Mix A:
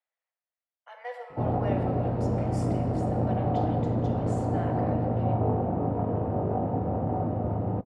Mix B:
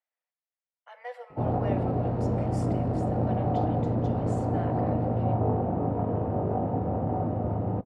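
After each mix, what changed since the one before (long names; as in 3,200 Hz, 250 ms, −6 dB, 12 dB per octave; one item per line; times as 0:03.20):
speech: send −9.5 dB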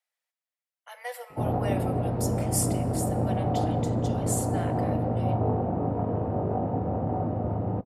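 speech: remove head-to-tape spacing loss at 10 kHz 30 dB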